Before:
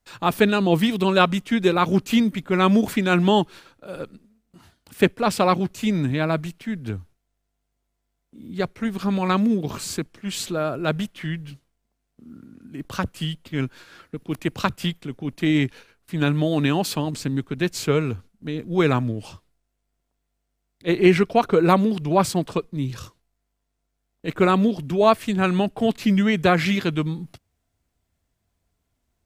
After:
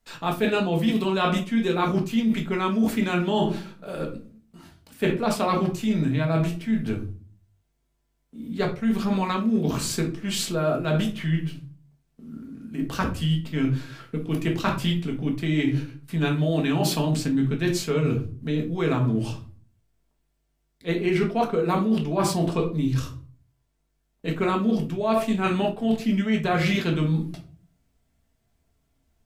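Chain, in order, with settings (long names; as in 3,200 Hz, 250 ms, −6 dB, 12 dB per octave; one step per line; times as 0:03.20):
rectangular room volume 280 cubic metres, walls furnished, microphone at 1.6 metres
reversed playback
downward compressor 10 to 1, threshold −19 dBFS, peak gain reduction 14 dB
reversed playback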